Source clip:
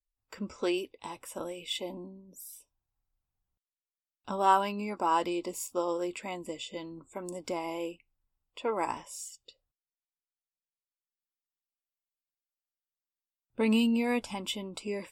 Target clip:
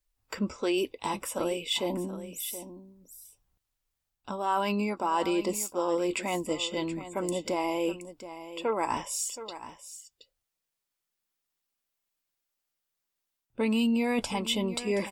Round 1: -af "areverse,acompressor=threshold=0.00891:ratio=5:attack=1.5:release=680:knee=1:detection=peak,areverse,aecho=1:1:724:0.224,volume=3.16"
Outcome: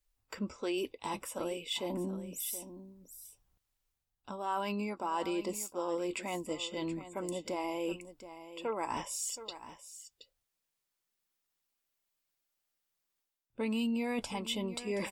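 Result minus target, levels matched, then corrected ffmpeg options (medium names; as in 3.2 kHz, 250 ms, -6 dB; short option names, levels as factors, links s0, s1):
compression: peak gain reduction +7 dB
-af "areverse,acompressor=threshold=0.0237:ratio=5:attack=1.5:release=680:knee=1:detection=peak,areverse,aecho=1:1:724:0.224,volume=3.16"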